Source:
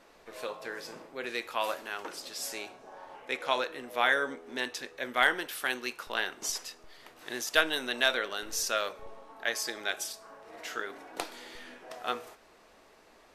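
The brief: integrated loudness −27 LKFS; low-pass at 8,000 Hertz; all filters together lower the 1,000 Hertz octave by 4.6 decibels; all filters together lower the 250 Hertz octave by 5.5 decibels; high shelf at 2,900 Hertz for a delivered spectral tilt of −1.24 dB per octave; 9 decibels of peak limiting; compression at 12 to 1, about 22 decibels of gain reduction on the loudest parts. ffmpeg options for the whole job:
ffmpeg -i in.wav -af "lowpass=8000,equalizer=frequency=250:width_type=o:gain=-7,equalizer=frequency=1000:width_type=o:gain=-5,highshelf=frequency=2900:gain=-7,acompressor=threshold=-45dB:ratio=12,volume=24dB,alimiter=limit=-12.5dB:level=0:latency=1" out.wav

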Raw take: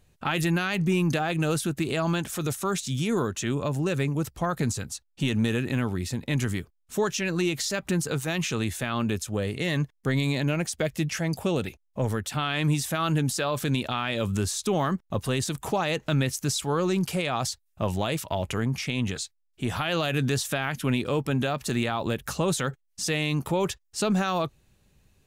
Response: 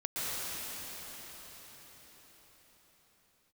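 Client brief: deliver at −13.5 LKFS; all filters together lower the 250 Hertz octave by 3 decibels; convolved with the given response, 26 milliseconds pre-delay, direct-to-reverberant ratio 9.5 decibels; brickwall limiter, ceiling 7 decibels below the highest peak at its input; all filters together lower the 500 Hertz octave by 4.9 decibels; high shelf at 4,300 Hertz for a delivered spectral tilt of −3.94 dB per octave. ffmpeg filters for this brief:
-filter_complex "[0:a]equalizer=frequency=250:width_type=o:gain=-3,equalizer=frequency=500:width_type=o:gain=-5.5,highshelf=frequency=4300:gain=7,alimiter=limit=-19dB:level=0:latency=1,asplit=2[link_01][link_02];[1:a]atrim=start_sample=2205,adelay=26[link_03];[link_02][link_03]afir=irnorm=-1:irlink=0,volume=-17dB[link_04];[link_01][link_04]amix=inputs=2:normalize=0,volume=15.5dB"

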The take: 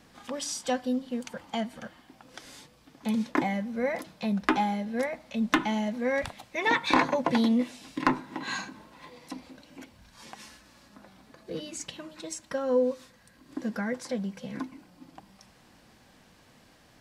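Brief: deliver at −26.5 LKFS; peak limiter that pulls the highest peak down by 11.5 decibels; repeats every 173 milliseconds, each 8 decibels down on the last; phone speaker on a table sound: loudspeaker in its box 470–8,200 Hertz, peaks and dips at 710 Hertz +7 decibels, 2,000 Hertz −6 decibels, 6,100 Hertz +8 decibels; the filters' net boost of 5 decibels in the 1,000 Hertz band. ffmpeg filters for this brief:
ffmpeg -i in.wav -af "equalizer=frequency=1000:width_type=o:gain=3.5,alimiter=limit=-18dB:level=0:latency=1,highpass=frequency=470:width=0.5412,highpass=frequency=470:width=1.3066,equalizer=frequency=710:width_type=q:width=4:gain=7,equalizer=frequency=2000:width_type=q:width=4:gain=-6,equalizer=frequency=6100:width_type=q:width=4:gain=8,lowpass=frequency=8200:width=0.5412,lowpass=frequency=8200:width=1.3066,aecho=1:1:173|346|519|692|865:0.398|0.159|0.0637|0.0255|0.0102,volume=5dB" out.wav

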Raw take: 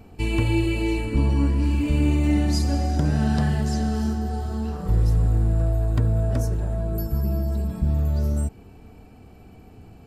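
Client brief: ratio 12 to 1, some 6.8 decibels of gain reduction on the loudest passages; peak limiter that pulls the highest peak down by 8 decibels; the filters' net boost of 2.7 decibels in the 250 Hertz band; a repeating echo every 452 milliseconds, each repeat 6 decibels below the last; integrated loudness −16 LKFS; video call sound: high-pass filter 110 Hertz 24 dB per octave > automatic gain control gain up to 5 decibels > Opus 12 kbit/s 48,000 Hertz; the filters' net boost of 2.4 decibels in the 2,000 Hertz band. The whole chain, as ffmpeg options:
ffmpeg -i in.wav -af "equalizer=frequency=250:width_type=o:gain=3.5,equalizer=frequency=2000:width_type=o:gain=3,acompressor=threshold=-21dB:ratio=12,alimiter=limit=-20dB:level=0:latency=1,highpass=frequency=110:width=0.5412,highpass=frequency=110:width=1.3066,aecho=1:1:452|904|1356|1808|2260|2712:0.501|0.251|0.125|0.0626|0.0313|0.0157,dynaudnorm=maxgain=5dB,volume=15.5dB" -ar 48000 -c:a libopus -b:a 12k out.opus

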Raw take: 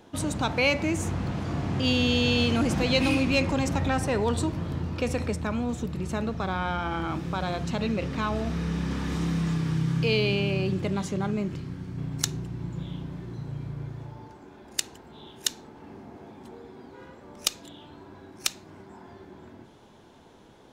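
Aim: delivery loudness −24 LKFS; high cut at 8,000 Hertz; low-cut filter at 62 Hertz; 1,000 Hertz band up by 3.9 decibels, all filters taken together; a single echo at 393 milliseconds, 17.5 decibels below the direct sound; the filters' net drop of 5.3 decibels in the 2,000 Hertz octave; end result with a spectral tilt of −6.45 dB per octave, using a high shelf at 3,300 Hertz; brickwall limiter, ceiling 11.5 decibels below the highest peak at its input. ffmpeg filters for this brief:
ffmpeg -i in.wav -af "highpass=62,lowpass=8000,equalizer=frequency=1000:width_type=o:gain=7,equalizer=frequency=2000:width_type=o:gain=-6,highshelf=frequency=3300:gain=-7.5,alimiter=limit=-22.5dB:level=0:latency=1,aecho=1:1:393:0.133,volume=8dB" out.wav

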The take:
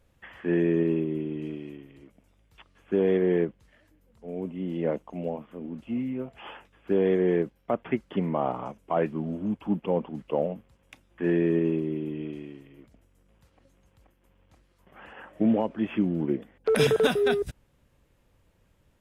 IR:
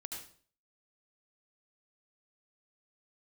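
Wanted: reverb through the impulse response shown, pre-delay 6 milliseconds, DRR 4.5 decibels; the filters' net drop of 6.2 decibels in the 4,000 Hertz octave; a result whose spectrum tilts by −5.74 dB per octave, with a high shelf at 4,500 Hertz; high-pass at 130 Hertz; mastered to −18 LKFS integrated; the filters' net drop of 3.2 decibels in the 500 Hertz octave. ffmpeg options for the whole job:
-filter_complex "[0:a]highpass=130,equalizer=frequency=500:width_type=o:gain=-4,equalizer=frequency=4000:width_type=o:gain=-5.5,highshelf=frequency=4500:gain=-5,asplit=2[link_01][link_02];[1:a]atrim=start_sample=2205,adelay=6[link_03];[link_02][link_03]afir=irnorm=-1:irlink=0,volume=-2.5dB[link_04];[link_01][link_04]amix=inputs=2:normalize=0,volume=11dB"

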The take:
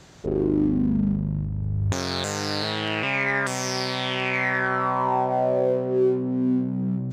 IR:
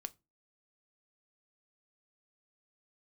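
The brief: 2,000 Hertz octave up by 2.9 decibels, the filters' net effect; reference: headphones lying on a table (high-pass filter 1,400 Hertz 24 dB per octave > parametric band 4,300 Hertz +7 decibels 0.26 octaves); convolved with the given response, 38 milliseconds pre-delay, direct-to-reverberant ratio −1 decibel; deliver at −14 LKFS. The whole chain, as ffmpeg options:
-filter_complex "[0:a]equalizer=frequency=2000:width_type=o:gain=4,asplit=2[link_01][link_02];[1:a]atrim=start_sample=2205,adelay=38[link_03];[link_02][link_03]afir=irnorm=-1:irlink=0,volume=4.5dB[link_04];[link_01][link_04]amix=inputs=2:normalize=0,highpass=frequency=1400:width=0.5412,highpass=frequency=1400:width=1.3066,equalizer=frequency=4300:width_type=o:width=0.26:gain=7,volume=6dB"

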